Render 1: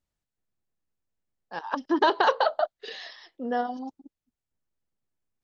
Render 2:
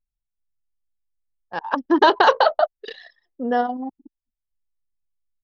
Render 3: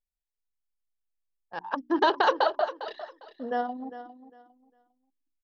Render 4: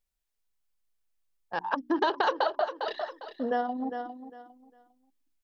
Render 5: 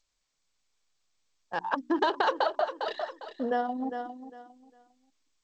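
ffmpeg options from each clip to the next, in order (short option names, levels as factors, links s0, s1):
-af "anlmdn=2.51,volume=2.24"
-af "bandreject=f=60:t=h:w=6,bandreject=f=120:t=h:w=6,bandreject=f=180:t=h:w=6,bandreject=f=240:t=h:w=6,bandreject=f=300:t=h:w=6,bandreject=f=360:t=h:w=6,aecho=1:1:403|806|1209:0.211|0.0486|0.0112,volume=0.398"
-af "acompressor=threshold=0.02:ratio=2.5,volume=2.11"
-ar 16000 -c:a g722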